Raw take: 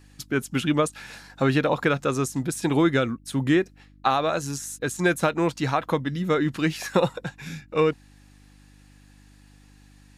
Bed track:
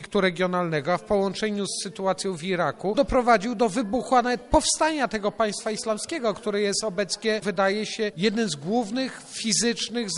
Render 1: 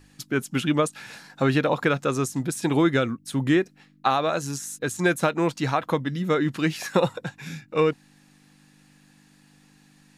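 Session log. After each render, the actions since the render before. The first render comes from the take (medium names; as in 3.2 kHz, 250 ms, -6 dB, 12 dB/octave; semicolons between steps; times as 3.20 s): de-hum 50 Hz, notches 2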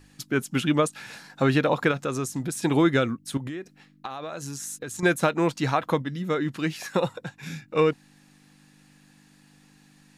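1.91–2.58 s: compression 2:1, threshold -26 dBFS; 3.37–5.03 s: compression 20:1, threshold -30 dBFS; 6.02–7.43 s: gain -3.5 dB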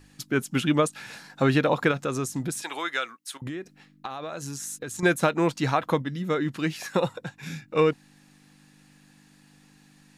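2.62–3.42 s: high-pass 990 Hz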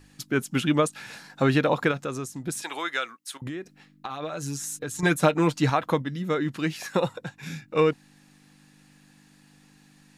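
1.75–2.47 s: fade out, to -8 dB; 4.09–5.70 s: comb 6.7 ms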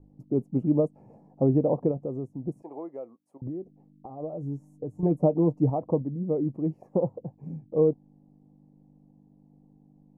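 inverse Chebyshev low-pass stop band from 1.4 kHz, stop band 40 dB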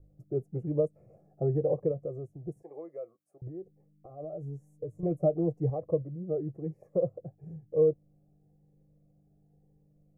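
static phaser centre 930 Hz, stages 6; Shepard-style phaser rising 1 Hz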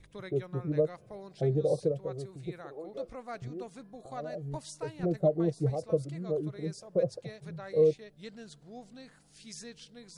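add bed track -23 dB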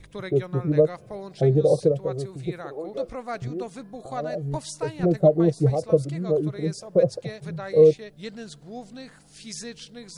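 trim +9 dB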